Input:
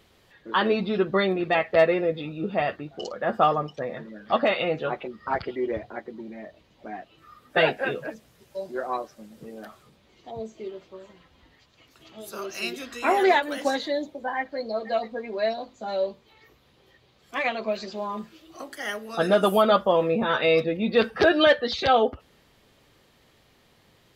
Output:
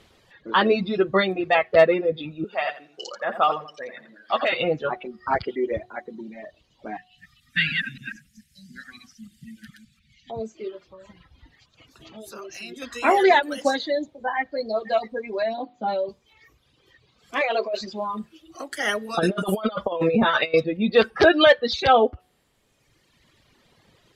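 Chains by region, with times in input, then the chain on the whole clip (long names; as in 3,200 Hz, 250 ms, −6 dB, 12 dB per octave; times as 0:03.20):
0:02.44–0:04.53: high-pass filter 1,000 Hz 6 dB per octave + repeating echo 85 ms, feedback 18%, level −5.5 dB
0:06.97–0:10.30: delay that plays each chunk backwards 144 ms, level −2 dB + elliptic band-stop filter 220–1,800 Hz
0:10.87–0:12.82: low-shelf EQ 200 Hz +7 dB + downward compressor 2.5 to 1, threshold −41 dBFS
0:15.42–0:16.09: downward compressor 3 to 1, threshold −27 dBFS + loudspeaker in its box 140–4,100 Hz, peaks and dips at 180 Hz +8 dB, 290 Hz +9 dB, 800 Hz +5 dB
0:17.41–0:17.81: high-pass with resonance 450 Hz, resonance Q 1.8 + compressor whose output falls as the input rises −26 dBFS
0:18.72–0:20.54: parametric band 8,800 Hz +3 dB 0.34 octaves + compressor whose output falls as the input rises −24 dBFS, ratio −0.5
whole clip: low-pass filter 11,000 Hz 12 dB per octave; hum removal 366.5 Hz, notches 9; reverb reduction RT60 1.7 s; level +4 dB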